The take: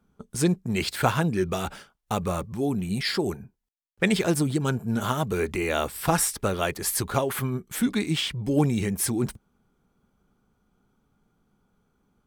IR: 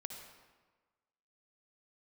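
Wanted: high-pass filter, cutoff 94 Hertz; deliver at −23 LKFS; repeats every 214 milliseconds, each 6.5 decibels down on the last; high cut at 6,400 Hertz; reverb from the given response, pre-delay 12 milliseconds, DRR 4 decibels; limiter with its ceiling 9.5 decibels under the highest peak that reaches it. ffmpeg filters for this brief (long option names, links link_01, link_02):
-filter_complex "[0:a]highpass=94,lowpass=6400,alimiter=limit=-16dB:level=0:latency=1,aecho=1:1:214|428|642|856|1070|1284:0.473|0.222|0.105|0.0491|0.0231|0.0109,asplit=2[link_01][link_02];[1:a]atrim=start_sample=2205,adelay=12[link_03];[link_02][link_03]afir=irnorm=-1:irlink=0,volume=-1.5dB[link_04];[link_01][link_04]amix=inputs=2:normalize=0,volume=3dB"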